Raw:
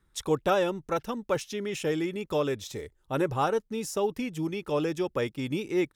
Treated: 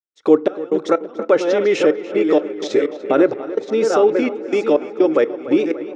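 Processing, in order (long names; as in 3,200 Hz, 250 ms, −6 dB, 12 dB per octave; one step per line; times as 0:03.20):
delay that plays each chunk backwards 529 ms, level −9.5 dB
camcorder AGC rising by 15 dB per second
downward expander −51 dBFS
parametric band 470 Hz +14 dB 3 octaves
in parallel at −1 dB: brickwall limiter −13 dBFS, peak gain reduction 11.5 dB
on the sum: gate pattern ".x.x.xxx.x" 63 BPM −24 dB
loudspeaker in its box 300–6,500 Hz, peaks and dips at 310 Hz +6 dB, 950 Hz −7 dB, 1,400 Hz +5 dB, 2,100 Hz +6 dB, 4,200 Hz +3 dB
on a send: tape delay 292 ms, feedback 75%, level −14 dB, low-pass 3,300 Hz
on the sum: feedback delay network reverb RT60 0.62 s, low-frequency decay 1×, high-frequency decay 0.4×, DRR 18 dB
level −2.5 dB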